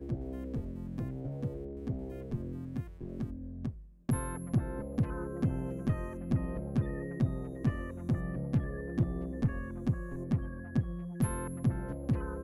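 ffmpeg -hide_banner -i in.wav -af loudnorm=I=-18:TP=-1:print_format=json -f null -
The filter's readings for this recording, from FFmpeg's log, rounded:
"input_i" : "-35.5",
"input_tp" : "-18.0",
"input_lra" : "4.9",
"input_thresh" : "-45.5",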